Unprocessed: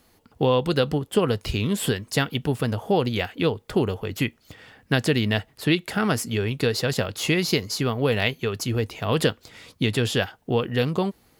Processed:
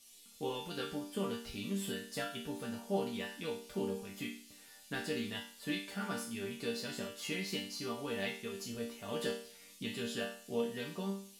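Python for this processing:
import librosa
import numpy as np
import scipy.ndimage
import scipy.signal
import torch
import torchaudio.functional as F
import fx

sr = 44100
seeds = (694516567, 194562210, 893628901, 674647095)

y = fx.dmg_noise_band(x, sr, seeds[0], low_hz=2500.0, high_hz=13000.0, level_db=-45.0)
y = fx.resonator_bank(y, sr, root=55, chord='minor', decay_s=0.47)
y = y * 10.0 ** (4.0 / 20.0)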